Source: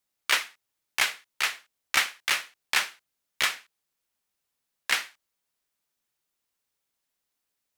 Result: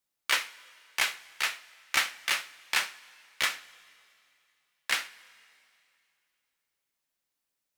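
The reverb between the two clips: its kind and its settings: two-slope reverb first 0.24 s, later 2.6 s, from -19 dB, DRR 10 dB; gain -3 dB

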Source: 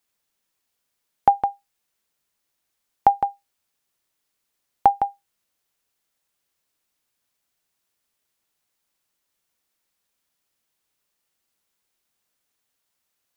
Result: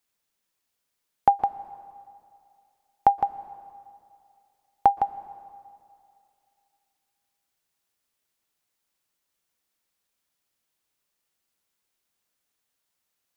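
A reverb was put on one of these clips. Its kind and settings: plate-style reverb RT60 2.5 s, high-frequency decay 0.8×, pre-delay 0.11 s, DRR 16.5 dB; gain -2.5 dB

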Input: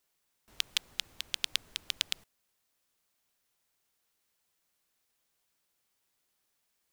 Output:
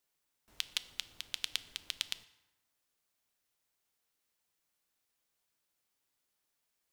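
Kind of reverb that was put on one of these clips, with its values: FDN reverb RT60 1.2 s, low-frequency decay 1.05×, high-frequency decay 0.6×, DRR 13 dB; gain -4.5 dB

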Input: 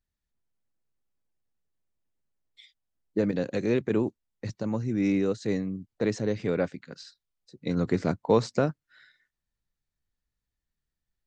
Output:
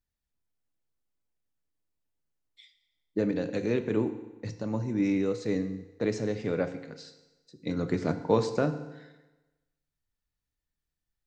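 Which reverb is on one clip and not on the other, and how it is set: FDN reverb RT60 1.1 s, low-frequency decay 0.95×, high-frequency decay 0.9×, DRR 8 dB; gain -2.5 dB

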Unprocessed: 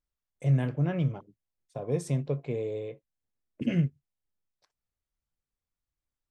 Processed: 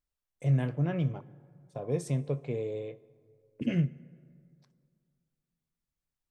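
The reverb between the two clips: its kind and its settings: plate-style reverb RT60 2.3 s, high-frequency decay 0.5×, DRR 19 dB; gain -1.5 dB

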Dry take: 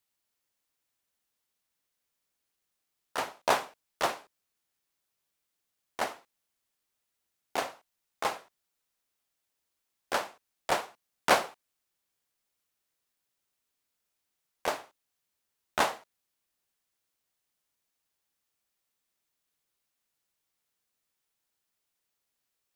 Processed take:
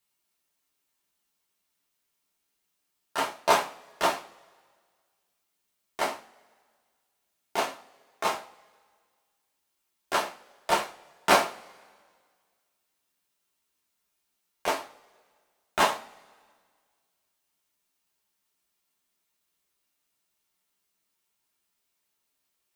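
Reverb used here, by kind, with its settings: two-slope reverb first 0.23 s, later 1.8 s, from -28 dB, DRR -2 dB

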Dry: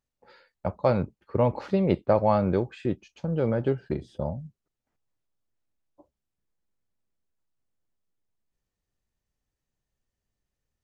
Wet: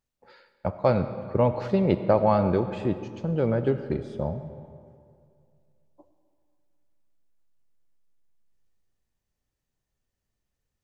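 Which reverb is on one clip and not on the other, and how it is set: digital reverb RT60 2.3 s, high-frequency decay 0.65×, pre-delay 35 ms, DRR 10.5 dB; gain +1 dB

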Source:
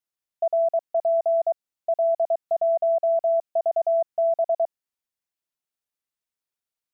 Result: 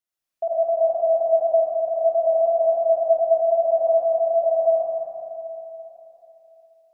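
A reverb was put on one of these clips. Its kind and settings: digital reverb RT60 3.4 s, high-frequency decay 0.9×, pre-delay 45 ms, DRR -8 dB; gain -2 dB

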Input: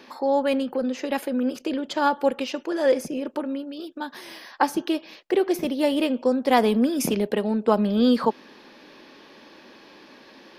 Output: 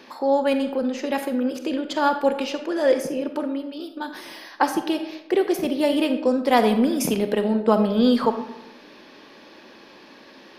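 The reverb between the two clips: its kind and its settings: digital reverb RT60 0.93 s, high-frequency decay 0.55×, pre-delay 5 ms, DRR 7.5 dB; gain +1 dB

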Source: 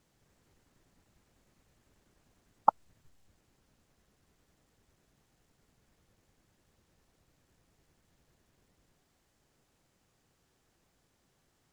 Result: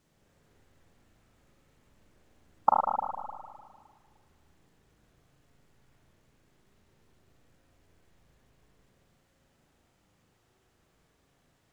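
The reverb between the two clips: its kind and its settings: spring tank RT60 1.8 s, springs 37/50 ms, chirp 30 ms, DRR -2.5 dB

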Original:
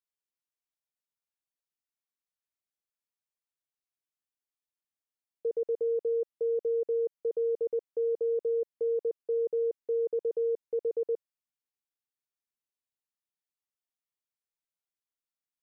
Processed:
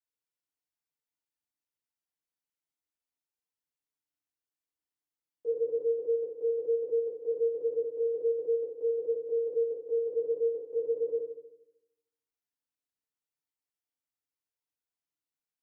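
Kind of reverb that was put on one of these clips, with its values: FDN reverb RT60 0.88 s, low-frequency decay 1.25×, high-frequency decay 0.7×, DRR -7 dB; gain -10 dB

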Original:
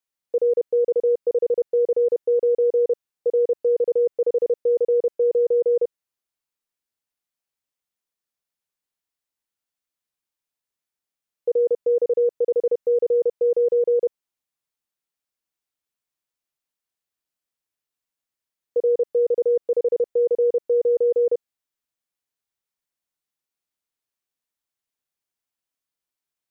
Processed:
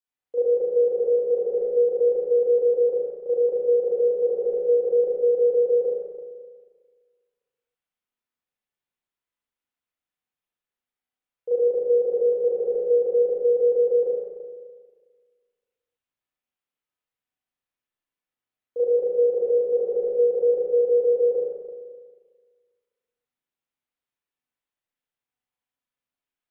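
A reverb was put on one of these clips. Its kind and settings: spring tank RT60 1.6 s, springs 33/37/41 ms, chirp 75 ms, DRR -10 dB; gain -10 dB

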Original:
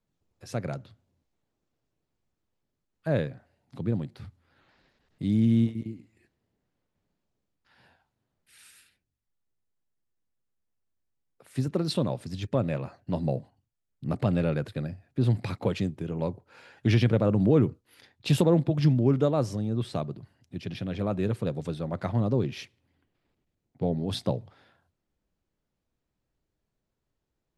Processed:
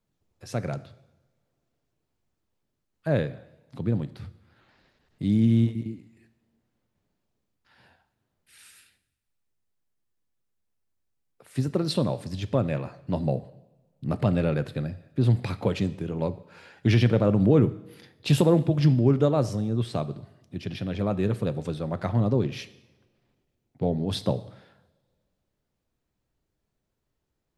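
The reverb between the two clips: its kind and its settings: two-slope reverb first 0.81 s, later 2.2 s, from -21 dB, DRR 13.5 dB; gain +2 dB

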